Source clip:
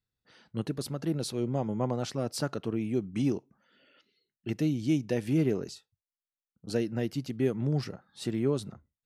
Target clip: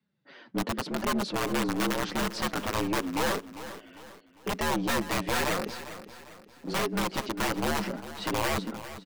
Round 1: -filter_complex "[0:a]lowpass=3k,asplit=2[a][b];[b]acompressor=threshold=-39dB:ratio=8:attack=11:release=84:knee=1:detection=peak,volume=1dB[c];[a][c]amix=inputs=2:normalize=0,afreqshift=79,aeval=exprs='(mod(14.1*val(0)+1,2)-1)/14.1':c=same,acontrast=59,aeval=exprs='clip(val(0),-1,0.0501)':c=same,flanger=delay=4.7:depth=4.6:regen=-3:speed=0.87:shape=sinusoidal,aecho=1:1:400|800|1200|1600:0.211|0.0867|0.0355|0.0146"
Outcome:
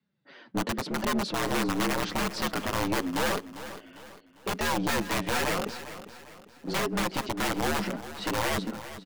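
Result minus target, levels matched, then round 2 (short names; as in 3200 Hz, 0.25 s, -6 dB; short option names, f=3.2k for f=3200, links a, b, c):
compressor: peak gain reduction -5.5 dB
-filter_complex "[0:a]lowpass=3k,asplit=2[a][b];[b]acompressor=threshold=-45.5dB:ratio=8:attack=11:release=84:knee=1:detection=peak,volume=1dB[c];[a][c]amix=inputs=2:normalize=0,afreqshift=79,aeval=exprs='(mod(14.1*val(0)+1,2)-1)/14.1':c=same,acontrast=59,aeval=exprs='clip(val(0),-1,0.0501)':c=same,flanger=delay=4.7:depth=4.6:regen=-3:speed=0.87:shape=sinusoidal,aecho=1:1:400|800|1200|1600:0.211|0.0867|0.0355|0.0146"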